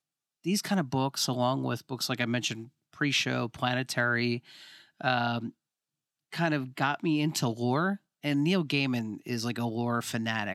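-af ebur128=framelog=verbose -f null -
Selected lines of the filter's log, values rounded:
Integrated loudness:
  I:         -29.6 LUFS
  Threshold: -40.0 LUFS
Loudness range:
  LRA:         2.2 LU
  Threshold: -50.2 LUFS
  LRA low:   -31.4 LUFS
  LRA high:  -29.2 LUFS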